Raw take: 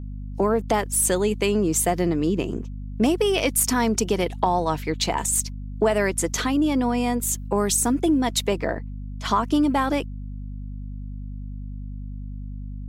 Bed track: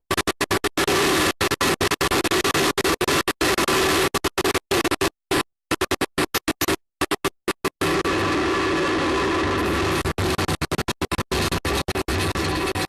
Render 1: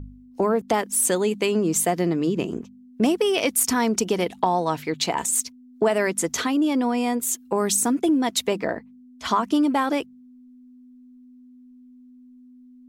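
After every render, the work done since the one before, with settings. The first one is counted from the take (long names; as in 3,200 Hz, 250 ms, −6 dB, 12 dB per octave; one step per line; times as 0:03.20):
hum removal 50 Hz, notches 4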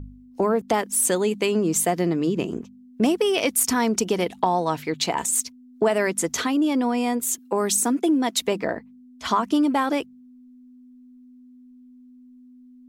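0:07.38–0:08.42: high-pass filter 190 Hz 24 dB per octave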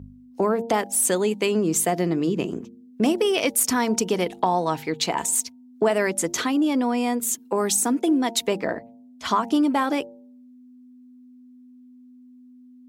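high-pass filter 75 Hz
hum removal 115.3 Hz, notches 8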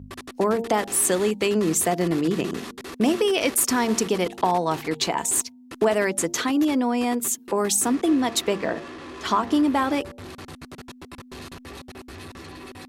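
mix in bed track −17.5 dB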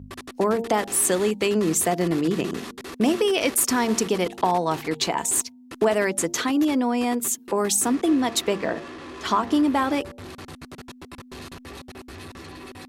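no processing that can be heard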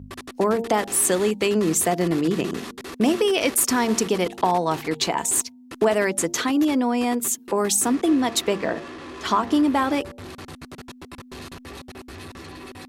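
level +1 dB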